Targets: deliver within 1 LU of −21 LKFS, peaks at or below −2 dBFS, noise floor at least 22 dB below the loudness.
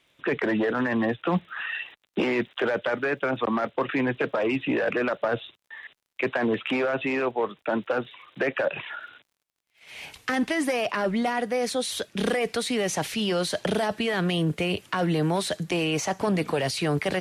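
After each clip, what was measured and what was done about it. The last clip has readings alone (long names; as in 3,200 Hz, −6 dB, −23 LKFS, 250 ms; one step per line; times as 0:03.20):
crackle rate 40 per second; integrated loudness −26.5 LKFS; sample peak −12.0 dBFS; target loudness −21.0 LKFS
→ click removal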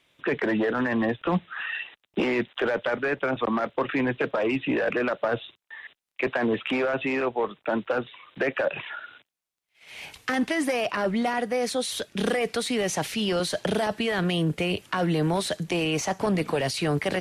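crackle rate 0 per second; integrated loudness −26.5 LKFS; sample peak −12.0 dBFS; target loudness −21.0 LKFS
→ level +5.5 dB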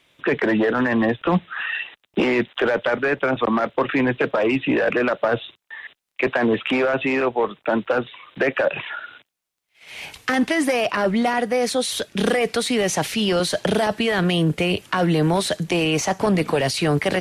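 integrated loudness −21.0 LKFS; sample peak −6.5 dBFS; background noise floor −79 dBFS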